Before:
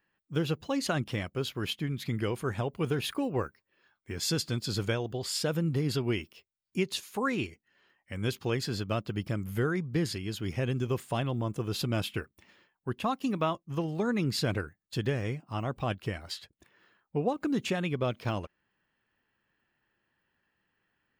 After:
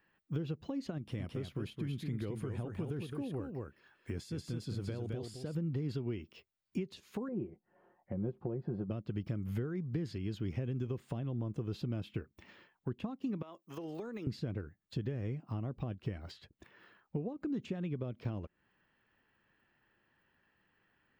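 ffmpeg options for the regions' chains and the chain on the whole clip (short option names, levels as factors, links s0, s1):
-filter_complex "[0:a]asettb=1/sr,asplit=3[s0][s1][s2];[s0]atrim=end=0.984[s3];[s1]atrim=start=0.98:end=5.55,asetpts=PTS-STARTPTS,afade=t=in:d=0.004:c=qsin,afade=t=out:st=4.566:d=0.004:c=qsin,equalizer=f=10000:w=1.6:g=14,acompressor=threshold=0.0158:ratio=2:attack=3.2:release=140:knee=1:detection=peak,aecho=1:1:216:0.501,atrim=end_sample=201537[s4];[s2]atrim=start=5.546[s5];[s3][s4]acrossfade=d=0.004:c1=hsin:c2=qsin[s6];[s6][s5]acrossfade=d=0.004:c1=qsin:c2=hsin,asettb=1/sr,asplit=3[s7][s8][s9];[s7]atrim=end=7.284[s10];[s8]atrim=start=7.28:end=8.91,asetpts=PTS-STARTPTS,afade=t=in:d=0.004:c=qsin,afade=t=out:st=1.626:d=0.004:c=qsin,lowpass=f=750:t=q:w=1.9,aecho=1:1:5.6:0.5,atrim=end_sample=71883[s11];[s9]atrim=start=8.906[s12];[s10][s11]acrossfade=d=0.004:c1=hsin:c2=qsin[s13];[s13][s12]acrossfade=d=0.004:c1=qsin:c2=hsin,asettb=1/sr,asplit=3[s14][s15][s16];[s14]atrim=end=13.424[s17];[s15]atrim=start=13.42:end=14.27,asetpts=PTS-STARTPTS,afade=t=in:d=0.004:c=qsin,afade=t=out:st=0.846:d=0.004:c=qsin,highpass=430,acompressor=threshold=0.0126:ratio=4:attack=3.2:release=140:knee=1:detection=peak,aemphasis=mode=production:type=50kf[s18];[s16]atrim=start=14.266[s19];[s17][s18]acrossfade=d=0.004:c1=hsin:c2=qsin[s20];[s20][s19]acrossfade=d=0.004:c1=qsin:c2=hsin,acompressor=threshold=0.0141:ratio=6,equalizer=f=11000:t=o:w=1.3:g=-14.5,acrossover=split=450[s21][s22];[s22]acompressor=threshold=0.00141:ratio=4[s23];[s21][s23]amix=inputs=2:normalize=0,volume=1.58"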